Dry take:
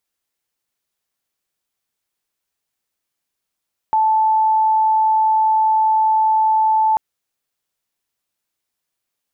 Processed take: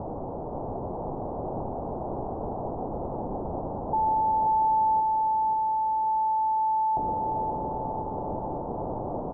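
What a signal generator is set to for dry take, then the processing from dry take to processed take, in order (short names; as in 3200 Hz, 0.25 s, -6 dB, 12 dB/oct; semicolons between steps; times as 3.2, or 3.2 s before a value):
tone sine 875 Hz -12 dBFS 3.04 s
infinite clipping; steep low-pass 870 Hz 48 dB/oct; on a send: feedback echo 0.534 s, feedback 57%, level -4.5 dB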